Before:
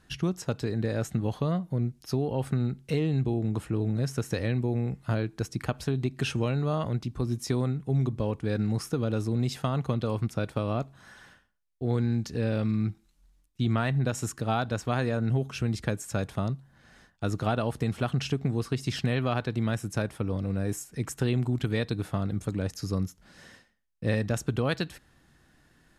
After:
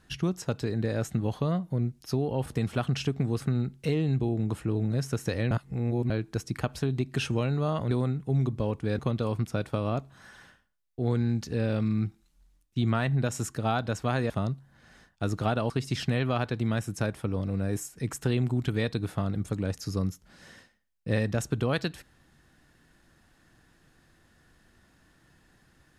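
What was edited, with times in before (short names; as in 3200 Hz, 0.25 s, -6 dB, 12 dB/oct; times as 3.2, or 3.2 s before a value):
4.56–5.15 reverse
6.96–7.51 cut
8.59–9.82 cut
15.13–16.31 cut
17.71–18.66 move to 2.46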